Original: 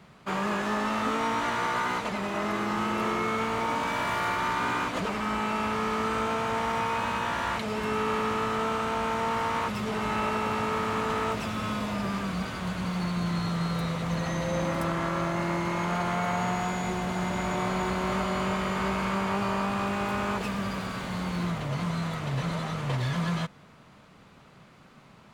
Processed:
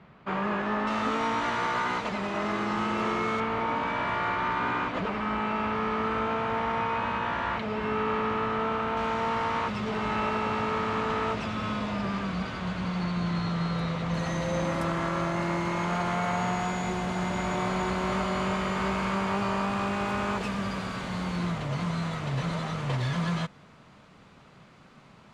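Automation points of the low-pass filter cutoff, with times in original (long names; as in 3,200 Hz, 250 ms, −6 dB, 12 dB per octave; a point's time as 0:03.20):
2,700 Hz
from 0:00.87 6,000 Hz
from 0:03.40 3,000 Hz
from 0:08.97 4,900 Hz
from 0:14.14 8,700 Hz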